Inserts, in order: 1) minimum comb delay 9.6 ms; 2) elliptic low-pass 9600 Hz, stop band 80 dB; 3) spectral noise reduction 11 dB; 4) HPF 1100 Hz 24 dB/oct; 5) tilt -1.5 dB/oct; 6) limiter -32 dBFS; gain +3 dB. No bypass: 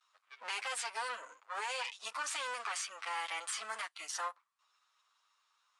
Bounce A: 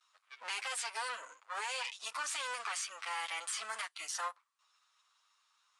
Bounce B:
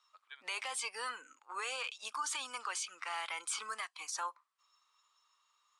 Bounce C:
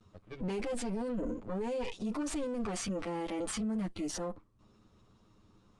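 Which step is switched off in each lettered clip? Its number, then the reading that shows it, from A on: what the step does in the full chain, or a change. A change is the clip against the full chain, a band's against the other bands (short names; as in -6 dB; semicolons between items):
5, 500 Hz band -3.0 dB; 1, 250 Hz band +4.0 dB; 4, crest factor change -5.0 dB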